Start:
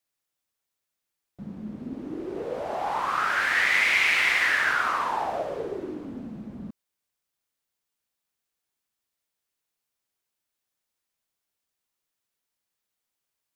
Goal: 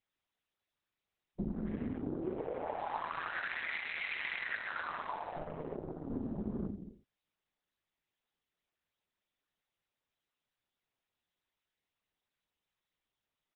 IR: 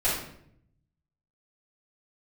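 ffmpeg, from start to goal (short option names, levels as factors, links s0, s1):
-filter_complex "[0:a]asettb=1/sr,asplit=3[s0][s1][s2];[s0]atrim=end=5.364[s3];[s1]atrim=start=5.36:end=6.1,asetpts=PTS-STARTPTS,afade=t=in:d=0.004:c=qsin,afade=t=out:st=0.736:d=0.004:c=qsin,aeval=exprs='if(lt(val(0),0),0.251*val(0),val(0))':c=same[s4];[s2]atrim=start=6.096[s5];[s3][s4]acrossfade=d=0.004:c1=hsin:c2=qsin[s6];[s6][s5]acrossfade=d=0.004:c1=qsin:c2=hsin,acontrast=68,asettb=1/sr,asplit=3[s7][s8][s9];[s7]atrim=end=1.544[s10];[s8]atrim=start=1.54:end=1.98,asetpts=PTS-STARTPTS,afade=t=in:d=0.004:c=qsin,afade=t=out:st=0.436:d=0.004:c=qsin,equalizer=f=1800:w=1.8:g=12.5[s11];[s9]atrim=start=1.976[s12];[s10][s11]acrossfade=d=0.004:c1=hsin:c2=qsin[s13];[s13][s12]acrossfade=d=0.004:c1=qsin:c2=hsin,bandreject=f=1300:w=15,asplit=2[s14][s15];[s15]lowpass=f=3900:p=1[s16];[1:a]atrim=start_sample=2205,afade=t=out:st=0.37:d=0.01,atrim=end_sample=16758,asetrate=52920,aresample=44100[s17];[s16][s17]afir=irnorm=-1:irlink=0,volume=0.0944[s18];[s14][s18]amix=inputs=2:normalize=0,afwtdn=0.00631,tremolo=f=160:d=0.824,acompressor=threshold=0.0158:ratio=20,aecho=1:1:86:0.2,volume=1.58" -ar 48000 -c:a libopus -b:a 6k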